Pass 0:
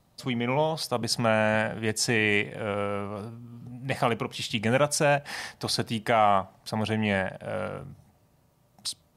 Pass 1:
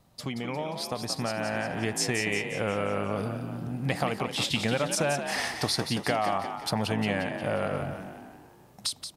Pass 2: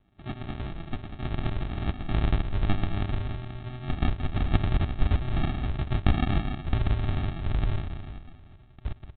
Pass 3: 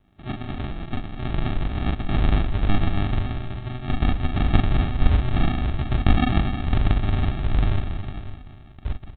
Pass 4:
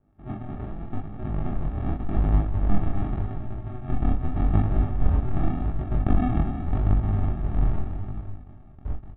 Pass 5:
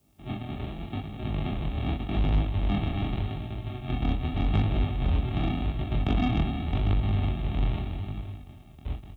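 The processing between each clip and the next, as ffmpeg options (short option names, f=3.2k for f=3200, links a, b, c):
-filter_complex "[0:a]acompressor=threshold=-32dB:ratio=6,asplit=2[a][b];[b]asplit=6[c][d][e][f][g][h];[c]adelay=177,afreqshift=54,volume=-8dB[i];[d]adelay=354,afreqshift=108,volume=-13.7dB[j];[e]adelay=531,afreqshift=162,volume=-19.4dB[k];[f]adelay=708,afreqshift=216,volume=-25dB[l];[g]adelay=885,afreqshift=270,volume=-30.7dB[m];[h]adelay=1062,afreqshift=324,volume=-36.4dB[n];[i][j][k][l][m][n]amix=inputs=6:normalize=0[o];[a][o]amix=inputs=2:normalize=0,dynaudnorm=f=280:g=11:m=5.5dB,volume=1.5dB"
-af "firequalizer=gain_entry='entry(110,0);entry(200,-25);entry(280,-4);entry(670,-4);entry(960,4)':delay=0.05:min_phase=1,aresample=8000,acrusher=samples=16:mix=1:aa=0.000001,aresample=44100,asubboost=boost=3:cutoff=110"
-af "aecho=1:1:40|44|315|538:0.631|0.376|0.15|0.251,volume=3.5dB"
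-filter_complex "[0:a]lowpass=1.1k,flanger=delay=19:depth=7.3:speed=0.85,asplit=2[a][b];[b]adelay=19,volume=-12dB[c];[a][c]amix=inputs=2:normalize=0"
-filter_complex "[0:a]highpass=43,acrossover=split=190[a][b];[b]aexciter=amount=7:drive=7.5:freq=2.4k[c];[a][c]amix=inputs=2:normalize=0,asoftclip=type=tanh:threshold=-16dB"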